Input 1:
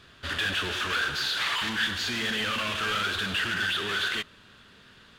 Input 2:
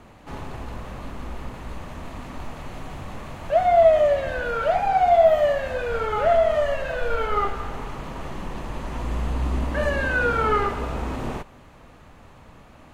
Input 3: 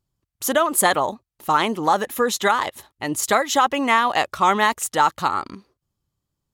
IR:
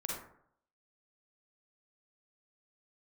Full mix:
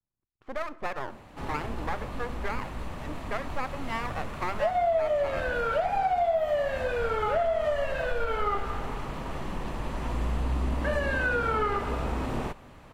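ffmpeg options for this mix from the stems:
-filter_complex "[1:a]bandreject=frequency=6500:width=17,adelay=1100,volume=-1.5dB[link_01];[2:a]lowpass=frequency=1800:width=0.5412,lowpass=frequency=1800:width=1.3066,aeval=exprs='max(val(0),0)':channel_layout=same,volume=-10.5dB,asplit=2[link_02][link_03];[link_03]volume=-17dB[link_04];[3:a]atrim=start_sample=2205[link_05];[link_04][link_05]afir=irnorm=-1:irlink=0[link_06];[link_01][link_02][link_06]amix=inputs=3:normalize=0,acompressor=threshold=-23dB:ratio=6"

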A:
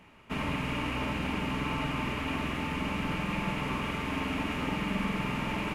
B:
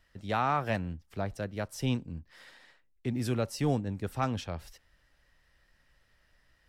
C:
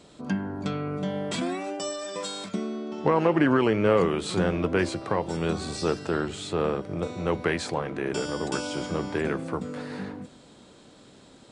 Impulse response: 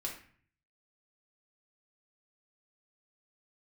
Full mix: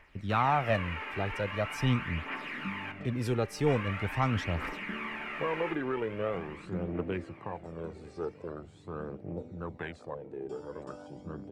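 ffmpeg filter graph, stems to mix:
-filter_complex "[0:a]acrossover=split=3600[link_01][link_02];[link_02]acompressor=threshold=-56dB:ratio=4:attack=1:release=60[link_03];[link_01][link_03]amix=inputs=2:normalize=0,highpass=340,equalizer=frequency=1800:width=1.2:gain=13,volume=-14.5dB,asplit=3[link_04][link_05][link_06];[link_04]atrim=end=2.92,asetpts=PTS-STARTPTS,afade=type=out:start_time=2.916:duration=0.004:curve=hsin[link_07];[link_05]atrim=start=2.92:end=3.66,asetpts=PTS-STARTPTS,volume=0[link_08];[link_06]atrim=start=3.66,asetpts=PTS-STARTPTS,afade=type=in:duration=0.004:curve=hsin[link_09];[link_07][link_08][link_09]concat=n=3:v=0:a=1,asplit=3[link_10][link_11][link_12];[link_11]volume=-6dB[link_13];[link_12]volume=-9.5dB[link_14];[1:a]highshelf=frequency=4100:gain=-8,acontrast=30,volume=-4dB,asplit=2[link_15][link_16];[2:a]afwtdn=0.0316,adelay=2350,volume=-12.5dB,asplit=2[link_17][link_18];[link_18]volume=-23dB[link_19];[link_16]apad=whole_len=611440[link_20];[link_17][link_20]sidechaincompress=threshold=-46dB:ratio=8:attack=16:release=127[link_21];[3:a]atrim=start_sample=2205[link_22];[link_13][link_22]afir=irnorm=-1:irlink=0[link_23];[link_14][link_19]amix=inputs=2:normalize=0,aecho=0:1:923|1846|2769|3692|4615|5538:1|0.41|0.168|0.0689|0.0283|0.0116[link_24];[link_10][link_15][link_21][link_23][link_24]amix=inputs=5:normalize=0,aphaser=in_gain=1:out_gain=1:delay=2.6:decay=0.46:speed=0.43:type=triangular"

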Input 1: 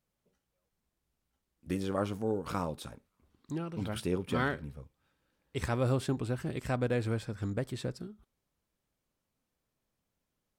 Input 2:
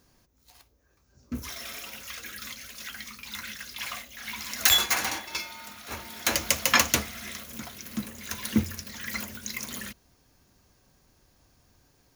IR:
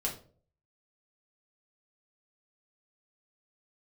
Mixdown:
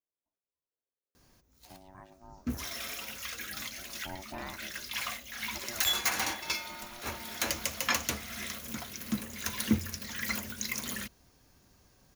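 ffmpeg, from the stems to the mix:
-filter_complex "[0:a]aeval=exprs='val(0)*sin(2*PI*470*n/s)':channel_layout=same,volume=-8dB,afade=type=in:start_time=3.92:duration=0.2:silence=0.334965,afade=type=out:start_time=5.53:duration=0.28:silence=0.298538,asplit=2[link_01][link_02];[1:a]adelay=1150,volume=0dB[link_03];[link_02]apad=whole_len=586895[link_04];[link_03][link_04]sidechaincompress=threshold=-50dB:ratio=4:attack=50:release=176[link_05];[link_01][link_05]amix=inputs=2:normalize=0,alimiter=limit=-14.5dB:level=0:latency=1:release=282"

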